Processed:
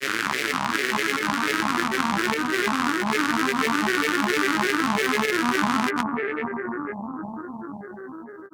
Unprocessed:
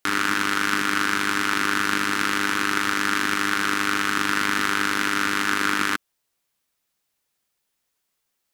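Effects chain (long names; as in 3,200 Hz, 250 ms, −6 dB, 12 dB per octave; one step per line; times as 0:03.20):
fake sidechain pumping 101 BPM, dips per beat 1, −13 dB, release 113 ms
bucket-brigade delay 473 ms, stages 4,096, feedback 75%, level −3.5 dB
granular cloud, pitch spread up and down by 7 semitones
level −1.5 dB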